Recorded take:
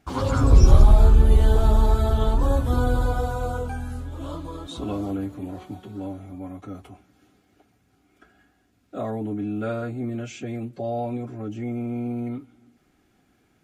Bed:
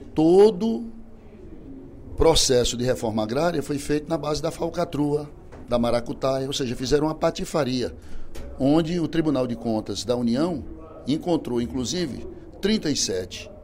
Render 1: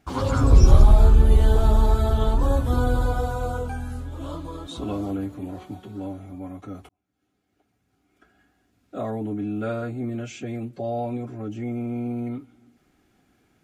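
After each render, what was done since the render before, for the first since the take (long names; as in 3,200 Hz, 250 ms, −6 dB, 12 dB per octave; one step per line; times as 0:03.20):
0:06.89–0:08.96: fade in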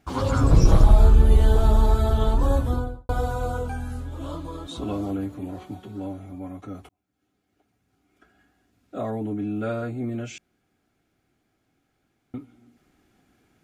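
0:00.48–0:00.90: lower of the sound and its delayed copy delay 6.1 ms
0:02.56–0:03.09: fade out and dull
0:10.38–0:12.34: fill with room tone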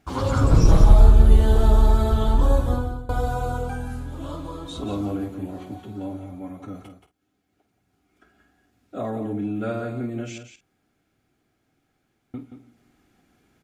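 double-tracking delay 49 ms −11.5 dB
single-tap delay 177 ms −9 dB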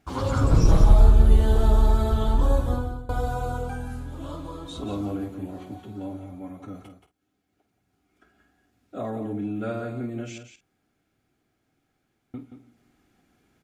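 level −2.5 dB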